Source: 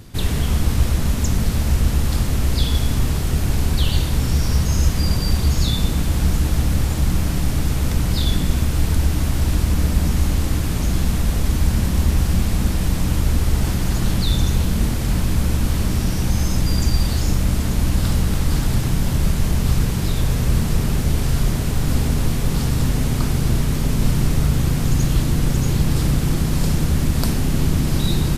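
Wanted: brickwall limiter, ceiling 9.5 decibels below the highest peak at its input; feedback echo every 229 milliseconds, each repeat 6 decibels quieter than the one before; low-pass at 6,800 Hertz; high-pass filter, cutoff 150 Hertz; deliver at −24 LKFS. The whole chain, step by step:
high-pass filter 150 Hz
low-pass filter 6,800 Hz
brickwall limiter −18 dBFS
repeating echo 229 ms, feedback 50%, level −6 dB
level +2 dB

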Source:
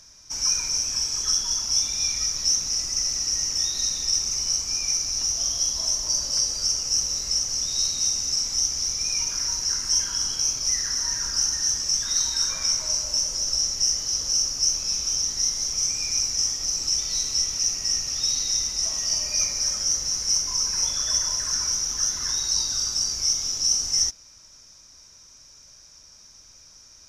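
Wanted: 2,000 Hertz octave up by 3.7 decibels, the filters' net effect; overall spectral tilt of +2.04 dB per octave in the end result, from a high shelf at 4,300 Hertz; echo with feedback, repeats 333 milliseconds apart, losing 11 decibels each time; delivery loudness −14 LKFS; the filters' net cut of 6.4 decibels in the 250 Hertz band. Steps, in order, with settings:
parametric band 250 Hz −9 dB
parametric band 2,000 Hz +5.5 dB
high-shelf EQ 4,300 Hz −3.5 dB
repeating echo 333 ms, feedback 28%, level −11 dB
level +9.5 dB

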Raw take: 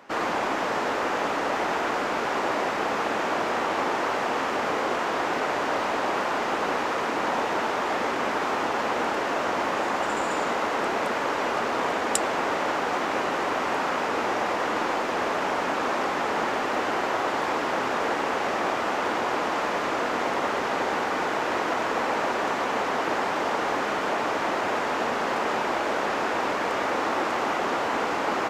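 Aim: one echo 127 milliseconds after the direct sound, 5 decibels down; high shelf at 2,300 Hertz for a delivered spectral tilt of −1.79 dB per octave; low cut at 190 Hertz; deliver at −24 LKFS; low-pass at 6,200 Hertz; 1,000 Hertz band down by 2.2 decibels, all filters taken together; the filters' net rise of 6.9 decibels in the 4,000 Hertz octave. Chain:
high-pass filter 190 Hz
low-pass filter 6,200 Hz
parametric band 1,000 Hz −4 dB
high-shelf EQ 2,300 Hz +5 dB
parametric band 4,000 Hz +5.5 dB
single-tap delay 127 ms −5 dB
level +0.5 dB

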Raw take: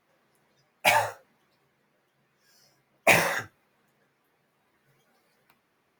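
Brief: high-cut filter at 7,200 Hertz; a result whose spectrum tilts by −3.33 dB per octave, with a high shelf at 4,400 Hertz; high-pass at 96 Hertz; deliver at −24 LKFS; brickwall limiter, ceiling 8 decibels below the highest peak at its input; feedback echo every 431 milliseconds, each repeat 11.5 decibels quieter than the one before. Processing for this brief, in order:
high-pass filter 96 Hz
low-pass filter 7,200 Hz
high-shelf EQ 4,400 Hz −5.5 dB
brickwall limiter −14.5 dBFS
repeating echo 431 ms, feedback 27%, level −11.5 dB
level +6 dB

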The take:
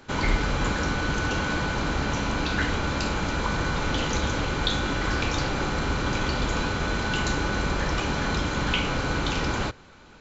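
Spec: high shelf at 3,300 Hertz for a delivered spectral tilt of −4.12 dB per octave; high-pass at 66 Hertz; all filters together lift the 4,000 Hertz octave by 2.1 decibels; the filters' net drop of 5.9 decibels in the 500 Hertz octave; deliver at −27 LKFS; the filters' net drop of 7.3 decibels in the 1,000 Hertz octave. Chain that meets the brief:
high-pass filter 66 Hz
parametric band 500 Hz −5.5 dB
parametric band 1,000 Hz −8 dB
high-shelf EQ 3,300 Hz −3.5 dB
parametric band 4,000 Hz +5.5 dB
level +1.5 dB

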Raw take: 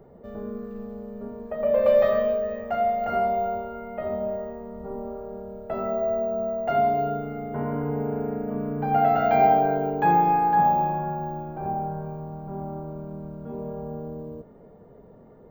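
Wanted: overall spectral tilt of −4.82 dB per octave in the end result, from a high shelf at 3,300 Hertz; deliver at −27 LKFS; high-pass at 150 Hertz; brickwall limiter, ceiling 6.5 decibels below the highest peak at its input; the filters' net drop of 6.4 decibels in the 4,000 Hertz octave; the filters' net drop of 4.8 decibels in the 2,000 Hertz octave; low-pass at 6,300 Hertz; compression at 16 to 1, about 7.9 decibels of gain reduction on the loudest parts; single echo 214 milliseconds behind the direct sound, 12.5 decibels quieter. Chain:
high-pass filter 150 Hz
low-pass filter 6,300 Hz
parametric band 2,000 Hz −5.5 dB
high-shelf EQ 3,300 Hz +3 dB
parametric band 4,000 Hz −8.5 dB
downward compressor 16 to 1, threshold −22 dBFS
brickwall limiter −22 dBFS
single-tap delay 214 ms −12.5 dB
level +4 dB

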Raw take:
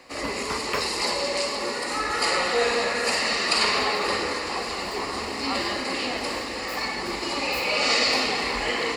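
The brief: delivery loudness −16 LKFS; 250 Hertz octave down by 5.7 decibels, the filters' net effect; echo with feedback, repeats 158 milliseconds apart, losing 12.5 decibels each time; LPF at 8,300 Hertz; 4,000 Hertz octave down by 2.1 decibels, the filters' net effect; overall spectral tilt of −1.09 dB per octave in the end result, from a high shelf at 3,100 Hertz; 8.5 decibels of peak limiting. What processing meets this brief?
low-pass filter 8,300 Hz
parametric band 250 Hz −7.5 dB
high-shelf EQ 3,100 Hz +7 dB
parametric band 4,000 Hz −8 dB
brickwall limiter −18 dBFS
repeating echo 158 ms, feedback 24%, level −12.5 dB
level +11 dB

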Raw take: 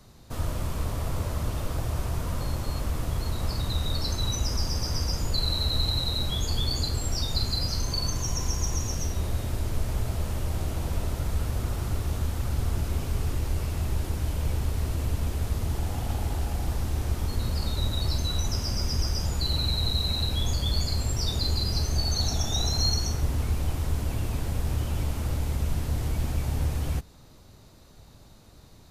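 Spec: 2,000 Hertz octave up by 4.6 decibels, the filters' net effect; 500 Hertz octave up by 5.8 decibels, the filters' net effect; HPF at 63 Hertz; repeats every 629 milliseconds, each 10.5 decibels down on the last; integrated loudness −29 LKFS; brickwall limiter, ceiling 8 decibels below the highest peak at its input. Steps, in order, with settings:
high-pass filter 63 Hz
parametric band 500 Hz +7 dB
parametric band 2,000 Hz +5.5 dB
brickwall limiter −22 dBFS
repeating echo 629 ms, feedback 30%, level −10.5 dB
level +2 dB

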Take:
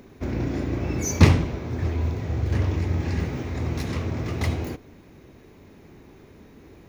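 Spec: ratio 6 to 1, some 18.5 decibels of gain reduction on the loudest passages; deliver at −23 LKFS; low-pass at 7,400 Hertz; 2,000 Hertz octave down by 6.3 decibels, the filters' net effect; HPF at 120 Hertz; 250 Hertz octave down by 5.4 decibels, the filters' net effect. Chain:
high-pass filter 120 Hz
low-pass filter 7,400 Hz
parametric band 250 Hz −7 dB
parametric band 2,000 Hz −7.5 dB
downward compressor 6 to 1, threshold −35 dBFS
level +16.5 dB

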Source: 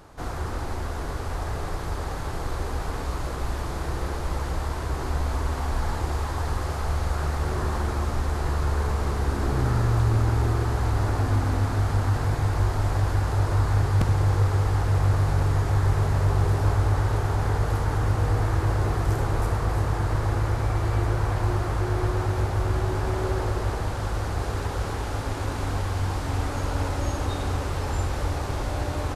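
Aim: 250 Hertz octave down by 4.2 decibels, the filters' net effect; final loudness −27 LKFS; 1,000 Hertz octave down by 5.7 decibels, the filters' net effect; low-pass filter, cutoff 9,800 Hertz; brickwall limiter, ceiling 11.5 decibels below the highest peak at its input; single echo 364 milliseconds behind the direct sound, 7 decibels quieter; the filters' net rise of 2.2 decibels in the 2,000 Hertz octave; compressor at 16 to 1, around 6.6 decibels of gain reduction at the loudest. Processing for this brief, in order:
low-pass filter 9,800 Hz
parametric band 250 Hz −6 dB
parametric band 1,000 Hz −9 dB
parametric band 2,000 Hz +6.5 dB
downward compressor 16 to 1, threshold −24 dBFS
brickwall limiter −28.5 dBFS
single-tap delay 364 ms −7 dB
level +9.5 dB

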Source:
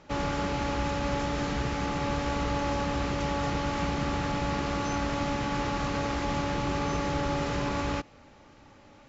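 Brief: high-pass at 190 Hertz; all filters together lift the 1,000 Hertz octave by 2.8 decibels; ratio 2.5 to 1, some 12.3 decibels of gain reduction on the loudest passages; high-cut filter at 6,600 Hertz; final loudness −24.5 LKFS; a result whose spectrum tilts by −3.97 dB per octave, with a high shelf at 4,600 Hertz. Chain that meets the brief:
high-pass filter 190 Hz
low-pass filter 6,600 Hz
parametric band 1,000 Hz +3 dB
high-shelf EQ 4,600 Hz +8.5 dB
downward compressor 2.5 to 1, threshold −45 dBFS
level +17 dB

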